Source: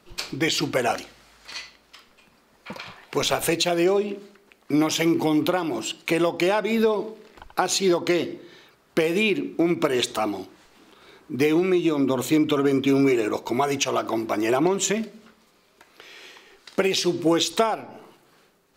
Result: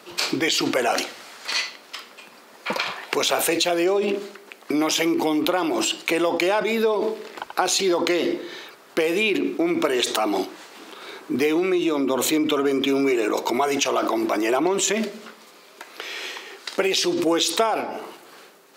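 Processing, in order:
high-pass filter 310 Hz 12 dB per octave
in parallel at +2 dB: compressor whose output falls as the input rises −34 dBFS, ratio −1

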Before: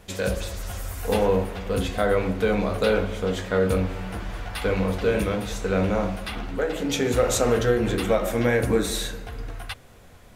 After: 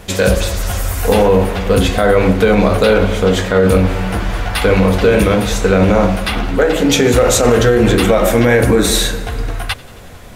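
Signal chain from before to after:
on a send: feedback echo with a high-pass in the loop 91 ms, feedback 72%, level −23 dB
on the sum: boost into a limiter +15 dB
level −1 dB

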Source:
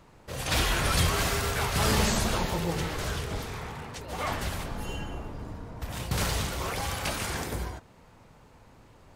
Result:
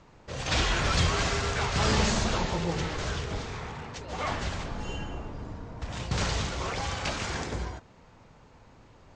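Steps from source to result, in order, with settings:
Butterworth low-pass 7,400 Hz 48 dB per octave

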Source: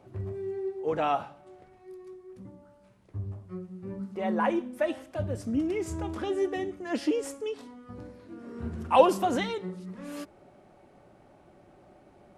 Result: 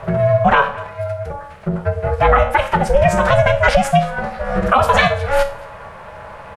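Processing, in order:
tuned comb filter 72 Hz, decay 0.66 s, harmonics all, mix 70%
phase-vocoder stretch with locked phases 0.53×
downward compressor 2.5 to 1, threshold −42 dBFS, peak gain reduction 13.5 dB
ring modulation 270 Hz
drawn EQ curve 210 Hz 0 dB, 300 Hz −17 dB, 560 Hz +4 dB, 970 Hz +4 dB, 1,400 Hz +11 dB, 6,000 Hz −1 dB
single-tap delay 223 ms −23 dB
boost into a limiter +32.5 dB
level −1 dB

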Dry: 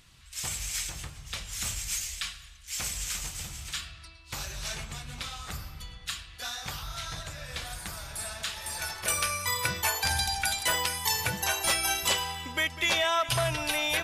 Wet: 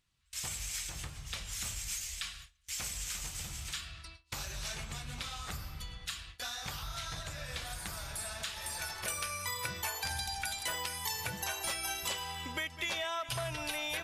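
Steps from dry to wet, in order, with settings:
downward compressor 2.5 to 1, threshold −38 dBFS, peak gain reduction 11 dB
noise gate with hold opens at −36 dBFS

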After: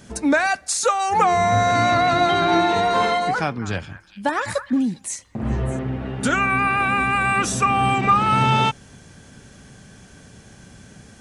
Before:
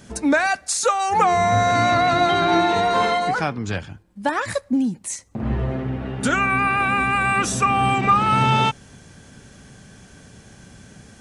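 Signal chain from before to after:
0:03.39–0:05.79: echo through a band-pass that steps 204 ms, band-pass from 1,300 Hz, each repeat 1.4 octaves, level −10 dB

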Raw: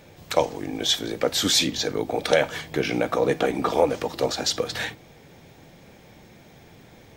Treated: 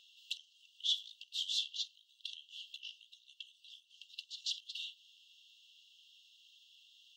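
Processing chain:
parametric band 5,100 Hz −11.5 dB 1.4 octaves
downward compressor 6 to 1, threshold −35 dBFS, peak gain reduction 19.5 dB
linear-phase brick-wall high-pass 2,700 Hz
high-frequency loss of the air 180 metres
level +11 dB

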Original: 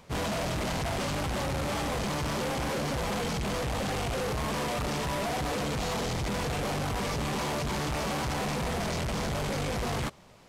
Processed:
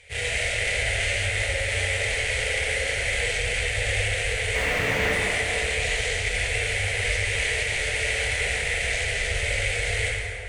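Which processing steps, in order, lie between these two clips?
drawn EQ curve 100 Hz 0 dB, 170 Hz −25 dB, 310 Hz −24 dB, 450 Hz −2 dB, 680 Hz −7 dB, 1,100 Hz −22 dB, 2,000 Hz +13 dB, 5,300 Hz −2 dB, 9,400 Hz +9 dB, 14,000 Hz −28 dB
0:04.55–0:05.12: mid-hump overdrive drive 37 dB, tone 1,000 Hz, clips at −16.5 dBFS
dense smooth reverb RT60 2.9 s, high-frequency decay 0.5×, DRR −4.5 dB

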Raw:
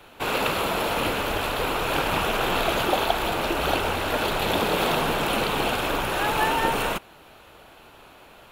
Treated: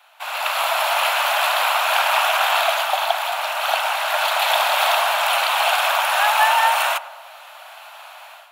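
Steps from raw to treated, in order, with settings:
Butterworth high-pass 620 Hz 72 dB per octave
automatic gain control gain up to 13 dB
on a send: feedback echo with a low-pass in the loop 101 ms, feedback 78%, low-pass 1,200 Hz, level −13.5 dB
on the sum: level −2.5 dB

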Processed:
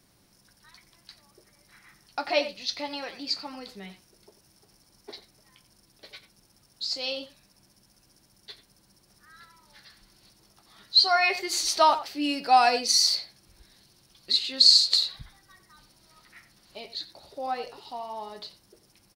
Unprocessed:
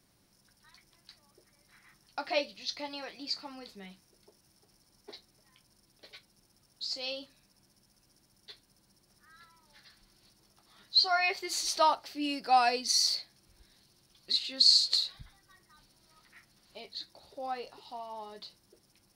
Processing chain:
0:10.95–0:11.36: parametric band 9,000 Hz +6 dB 0.21 octaves
far-end echo of a speakerphone 90 ms, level −12 dB
level +5.5 dB

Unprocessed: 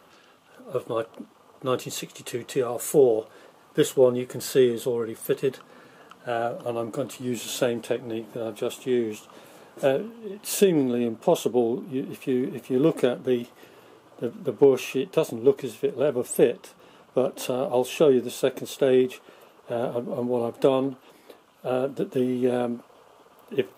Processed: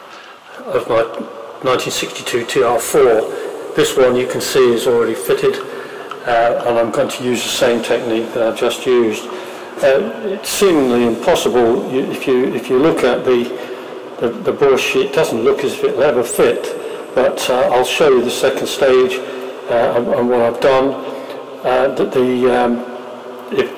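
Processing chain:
coupled-rooms reverb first 0.24 s, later 4.7 s, from −21 dB, DRR 8.5 dB
mid-hump overdrive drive 25 dB, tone 2,700 Hz, clips at −6 dBFS
level +3 dB

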